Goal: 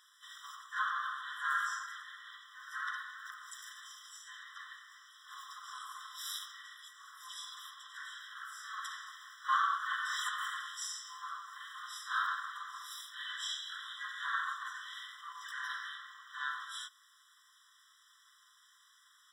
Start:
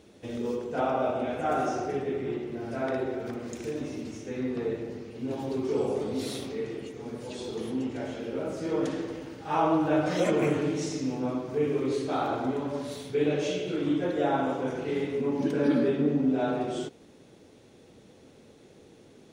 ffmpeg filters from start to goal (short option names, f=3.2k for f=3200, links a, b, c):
-filter_complex "[0:a]asplit=3[a][b][c];[b]asetrate=52444,aresample=44100,atempo=0.840896,volume=-1dB[d];[c]asetrate=58866,aresample=44100,atempo=0.749154,volume=-16dB[e];[a][d][e]amix=inputs=3:normalize=0,afftfilt=real='re*eq(mod(floor(b*sr/1024/1000),2),1)':imag='im*eq(mod(floor(b*sr/1024/1000),2),1)':win_size=1024:overlap=0.75"